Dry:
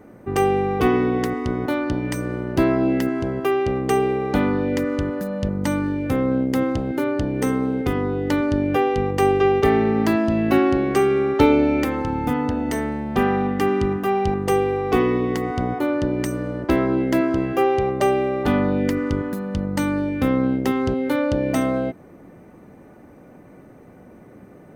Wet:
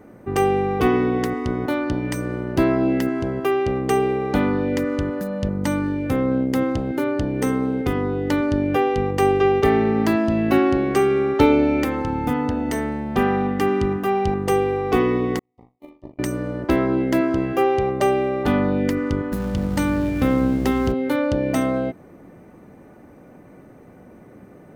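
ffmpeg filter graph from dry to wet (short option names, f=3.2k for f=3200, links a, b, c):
-filter_complex "[0:a]asettb=1/sr,asplit=3[a][b][c];[a]atrim=end=15.394[d];[b]atrim=start=15.39:end=16.19,asetpts=PTS-STARTPTS,afade=t=in:d=0.004:c=qsin,afade=t=out:st=0.796:d=0.004:c=qsin,agate=range=-50dB:threshold=-18dB:ratio=16:release=100:detection=peak,asuperstop=centerf=1500:order=4:qfactor=2.1,asplit=2[e][f];[f]adelay=40,volume=-6dB[g];[e][g]amix=inputs=2:normalize=0,atrim=end_sample=35280[h];[c]atrim=start=16.186[i];[d][h]acrossfade=d=0.004:c1=hsin:c2=qsin[j];[j][i]acrossfade=d=0.004:c1=qsin:c2=hsin,asettb=1/sr,asplit=3[k][l][m];[k]atrim=end=19.324[n];[l]atrim=start=19.32:end=20.92,asetpts=PTS-STARTPTS,afade=t=in:d=0.004:c=qsin,afade=t=out:st=1.596:d=0.004:c=qsin,aeval=exprs='val(0)+0.5*0.0211*sgn(val(0))':c=same,aeval=exprs='val(0)+0.0355*(sin(2*PI*60*n/s)+sin(2*PI*2*60*n/s)/2+sin(2*PI*3*60*n/s)/3+sin(2*PI*4*60*n/s)/4+sin(2*PI*5*60*n/s)/5)':c=same[o];[m]atrim=start=20.916[p];[n][o]acrossfade=d=0.004:c1=hsin:c2=qsin[q];[q][p]acrossfade=d=0.004:c1=qsin:c2=hsin"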